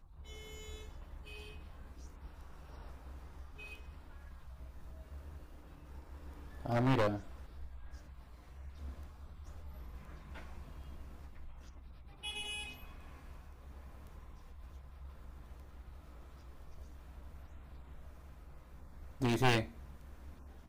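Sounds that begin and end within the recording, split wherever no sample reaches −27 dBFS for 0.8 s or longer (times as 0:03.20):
0:06.72–0:07.08
0:19.23–0:19.60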